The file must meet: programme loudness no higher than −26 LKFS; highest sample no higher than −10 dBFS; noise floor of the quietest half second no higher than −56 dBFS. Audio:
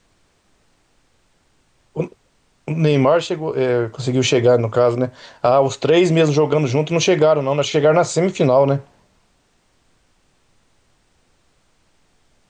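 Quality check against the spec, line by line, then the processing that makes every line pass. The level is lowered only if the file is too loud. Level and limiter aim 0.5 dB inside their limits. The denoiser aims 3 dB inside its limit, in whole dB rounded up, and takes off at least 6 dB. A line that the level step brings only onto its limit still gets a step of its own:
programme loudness −17.0 LKFS: out of spec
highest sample −5.0 dBFS: out of spec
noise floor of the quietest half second −61 dBFS: in spec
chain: level −9.5 dB

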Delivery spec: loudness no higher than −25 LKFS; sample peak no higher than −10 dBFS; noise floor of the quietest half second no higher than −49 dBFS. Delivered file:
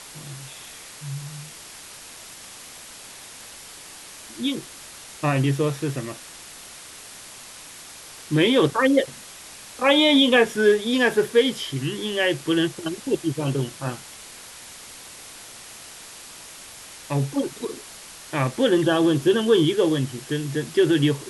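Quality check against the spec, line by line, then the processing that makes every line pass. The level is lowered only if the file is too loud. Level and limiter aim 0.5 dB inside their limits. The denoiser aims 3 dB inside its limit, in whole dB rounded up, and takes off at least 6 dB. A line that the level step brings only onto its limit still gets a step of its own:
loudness −22.0 LKFS: out of spec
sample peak −5.5 dBFS: out of spec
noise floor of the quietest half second −42 dBFS: out of spec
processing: broadband denoise 7 dB, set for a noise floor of −42 dBFS
level −3.5 dB
brickwall limiter −10.5 dBFS

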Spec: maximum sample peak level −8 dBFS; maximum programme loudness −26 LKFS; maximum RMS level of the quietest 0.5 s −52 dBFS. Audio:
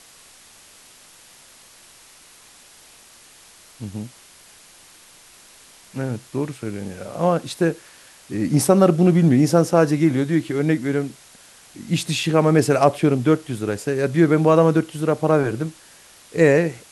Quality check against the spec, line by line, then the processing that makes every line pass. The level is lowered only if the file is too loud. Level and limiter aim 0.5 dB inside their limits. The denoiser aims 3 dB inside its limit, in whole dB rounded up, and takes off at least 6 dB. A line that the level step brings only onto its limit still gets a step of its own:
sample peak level −1.5 dBFS: out of spec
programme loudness −19.0 LKFS: out of spec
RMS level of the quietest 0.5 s −48 dBFS: out of spec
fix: level −7.5 dB

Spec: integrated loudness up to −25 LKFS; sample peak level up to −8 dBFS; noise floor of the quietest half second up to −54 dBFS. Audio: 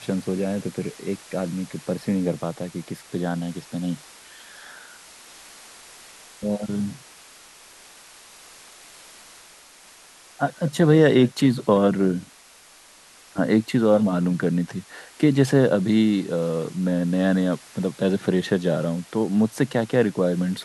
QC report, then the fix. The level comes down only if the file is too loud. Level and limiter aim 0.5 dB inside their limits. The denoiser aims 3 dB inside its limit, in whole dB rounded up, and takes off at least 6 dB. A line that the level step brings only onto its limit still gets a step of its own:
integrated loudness −22.5 LKFS: out of spec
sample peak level −5.0 dBFS: out of spec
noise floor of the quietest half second −50 dBFS: out of spec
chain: broadband denoise 6 dB, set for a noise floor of −50 dBFS
level −3 dB
brickwall limiter −8.5 dBFS

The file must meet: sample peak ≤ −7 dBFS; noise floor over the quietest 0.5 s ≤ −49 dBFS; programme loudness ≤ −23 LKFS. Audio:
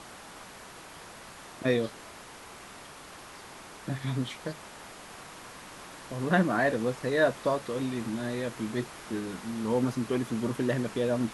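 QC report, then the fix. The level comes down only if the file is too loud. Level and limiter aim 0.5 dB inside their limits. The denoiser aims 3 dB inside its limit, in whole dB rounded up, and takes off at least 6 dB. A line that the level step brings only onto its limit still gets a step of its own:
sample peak −12.0 dBFS: in spec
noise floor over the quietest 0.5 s −47 dBFS: out of spec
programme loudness −30.5 LKFS: in spec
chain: broadband denoise 6 dB, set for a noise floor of −47 dBFS

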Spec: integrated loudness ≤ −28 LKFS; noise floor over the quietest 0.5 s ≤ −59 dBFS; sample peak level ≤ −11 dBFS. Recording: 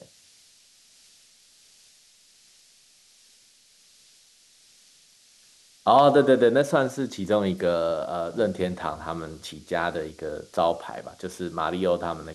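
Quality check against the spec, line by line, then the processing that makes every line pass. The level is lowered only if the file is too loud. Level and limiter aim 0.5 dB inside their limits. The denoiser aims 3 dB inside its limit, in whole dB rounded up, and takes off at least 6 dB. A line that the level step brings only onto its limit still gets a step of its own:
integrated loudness −24.5 LKFS: out of spec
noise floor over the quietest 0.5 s −58 dBFS: out of spec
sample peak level −6.0 dBFS: out of spec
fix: level −4 dB
brickwall limiter −11.5 dBFS

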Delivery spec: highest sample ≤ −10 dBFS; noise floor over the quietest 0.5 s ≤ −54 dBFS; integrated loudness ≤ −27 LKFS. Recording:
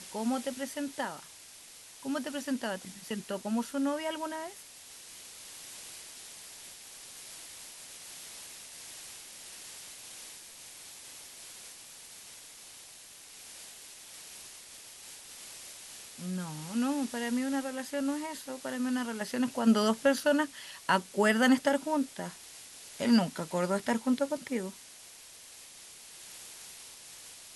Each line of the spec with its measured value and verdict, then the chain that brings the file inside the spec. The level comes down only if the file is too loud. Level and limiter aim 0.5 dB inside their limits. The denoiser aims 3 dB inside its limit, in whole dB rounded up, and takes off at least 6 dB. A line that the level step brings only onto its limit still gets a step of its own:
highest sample −11.5 dBFS: in spec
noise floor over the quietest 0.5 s −52 dBFS: out of spec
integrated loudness −32.5 LKFS: in spec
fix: broadband denoise 6 dB, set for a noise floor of −52 dBFS

